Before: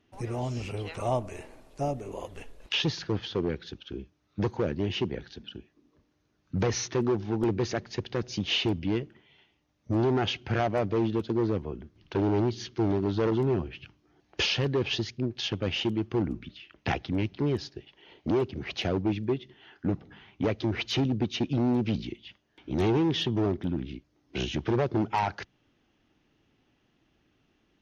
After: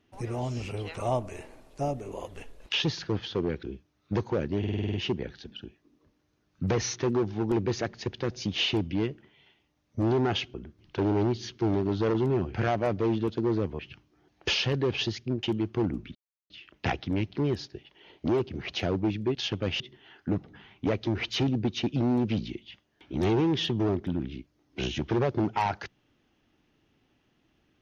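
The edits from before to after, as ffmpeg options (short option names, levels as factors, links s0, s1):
-filter_complex "[0:a]asplit=16[s0][s1][s2][s3][s4][s5][s6][s7][s8][s9][s10][s11][s12][s13][s14][s15];[s0]atrim=end=3.632[s16];[s1]atrim=start=3.898:end=4.912[s17];[s2]atrim=start=4.858:end=4.912[s18];[s3]atrim=start=4.858:end=4.912[s19];[s4]atrim=start=4.858:end=4.912[s20];[s5]atrim=start=4.858:end=4.912[s21];[s6]atrim=start=4.858:end=4.912[s22];[s7]atrim=start=4.858:end=4.912[s23];[s8]atrim=start=4.858:end=10.462[s24];[s9]atrim=start=11.708:end=13.712[s25];[s10]atrim=start=10.458:end=11.712[s26];[s11]atrim=start=13.708:end=15.352[s27];[s12]atrim=start=15.798:end=16.52,asetpts=PTS-STARTPTS,afade=t=out:st=0.718:d=0.004:c=hsin,apad=pad_dur=0.35[s28];[s13]atrim=start=16.52:end=19.372,asetpts=PTS-STARTPTS,afade=t=in:d=0.004:c=hsin[s29];[s14]atrim=start=15.348:end=15.802[s30];[s15]atrim=start=19.368[s31];[s16][s17]acrossfade=d=0.004:c1=hsin:c2=hsin[s32];[s32][s18]acrossfade=d=0.004:c1=hsin:c2=hsin[s33];[s33][s19]acrossfade=d=0.004:c1=hsin:c2=hsin[s34];[s34][s20]acrossfade=d=0.004:c1=hsin:c2=hsin[s35];[s35][s21]acrossfade=d=0.004:c1=hsin:c2=hsin[s36];[s36][s22]acrossfade=d=0.004:c1=hsin:c2=hsin[s37];[s37][s23]acrossfade=d=0.004:c1=hsin:c2=hsin[s38];[s38][s24]acrossfade=d=0.004:c1=hsin:c2=hsin[s39];[s39][s25]acrossfade=d=0.004:c1=hsin:c2=hsin[s40];[s40][s26]acrossfade=d=0.004:c1=hsin:c2=hsin[s41];[s41][s27]acrossfade=d=0.004:c1=hsin:c2=hsin[s42];[s28][s29]concat=n=2:v=0:a=1[s43];[s42][s43]acrossfade=d=0.004:c1=hsin:c2=hsin[s44];[s44][s30]acrossfade=d=0.004:c1=hsin:c2=hsin[s45];[s45][s31]acrossfade=d=0.004:c1=hsin:c2=hsin"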